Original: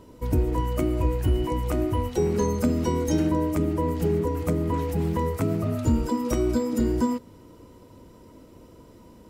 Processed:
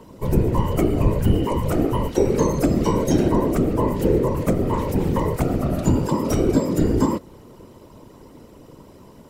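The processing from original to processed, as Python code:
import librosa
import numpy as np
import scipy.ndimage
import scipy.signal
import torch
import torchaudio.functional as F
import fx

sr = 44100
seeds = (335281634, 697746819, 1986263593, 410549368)

y = fx.whisperise(x, sr, seeds[0])
y = y * 10.0 ** (4.5 / 20.0)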